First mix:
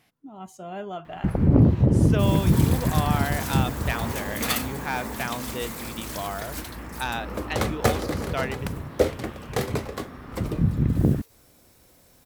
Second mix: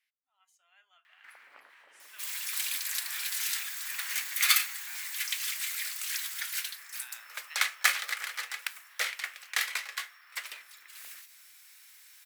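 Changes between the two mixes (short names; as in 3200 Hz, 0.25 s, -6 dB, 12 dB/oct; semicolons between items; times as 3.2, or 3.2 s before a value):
speech -10.5 dB; second sound +11.0 dB; master: add ladder high-pass 1500 Hz, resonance 35%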